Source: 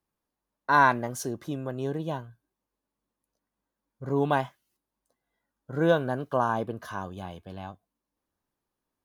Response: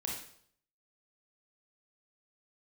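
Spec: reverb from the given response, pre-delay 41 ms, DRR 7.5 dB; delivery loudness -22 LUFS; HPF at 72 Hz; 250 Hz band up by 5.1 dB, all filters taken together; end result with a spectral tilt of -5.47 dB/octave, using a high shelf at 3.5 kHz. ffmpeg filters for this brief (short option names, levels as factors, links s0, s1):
-filter_complex "[0:a]highpass=72,equalizer=f=250:t=o:g=6.5,highshelf=f=3500:g=8,asplit=2[s0][s1];[1:a]atrim=start_sample=2205,adelay=41[s2];[s1][s2]afir=irnorm=-1:irlink=0,volume=0.355[s3];[s0][s3]amix=inputs=2:normalize=0,volume=1.41"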